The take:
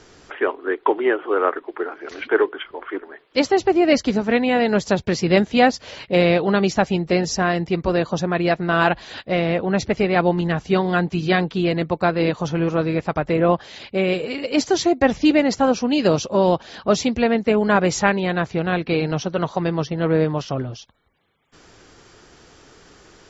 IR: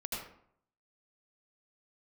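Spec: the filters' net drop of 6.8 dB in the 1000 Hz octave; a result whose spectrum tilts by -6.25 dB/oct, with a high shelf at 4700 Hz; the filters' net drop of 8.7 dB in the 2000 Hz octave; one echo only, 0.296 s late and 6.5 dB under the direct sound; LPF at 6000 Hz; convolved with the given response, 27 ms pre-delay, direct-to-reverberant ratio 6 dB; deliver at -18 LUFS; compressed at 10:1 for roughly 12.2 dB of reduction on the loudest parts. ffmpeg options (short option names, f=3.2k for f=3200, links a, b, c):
-filter_complex "[0:a]lowpass=6k,equalizer=f=1k:t=o:g=-8.5,equalizer=f=2k:t=o:g=-7.5,highshelf=f=4.7k:g=-5,acompressor=threshold=-26dB:ratio=10,aecho=1:1:296:0.473,asplit=2[a][b];[1:a]atrim=start_sample=2205,adelay=27[c];[b][c]afir=irnorm=-1:irlink=0,volume=-8dB[d];[a][d]amix=inputs=2:normalize=0,volume=11.5dB"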